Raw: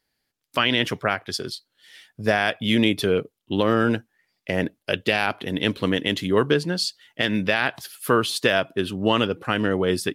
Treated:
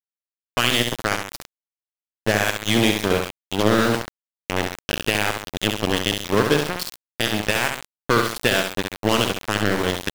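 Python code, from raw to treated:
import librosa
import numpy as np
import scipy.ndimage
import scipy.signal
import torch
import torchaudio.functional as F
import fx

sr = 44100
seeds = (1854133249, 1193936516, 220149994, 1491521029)

y = fx.cheby_harmonics(x, sr, harmonics=(2, 4, 5, 7), levels_db=(-40, -20, -21, -16), full_scale_db=-6.0)
y = fx.room_flutter(y, sr, wall_m=11.5, rt60_s=0.77)
y = np.where(np.abs(y) >= 10.0 ** (-21.0 / 20.0), y, 0.0)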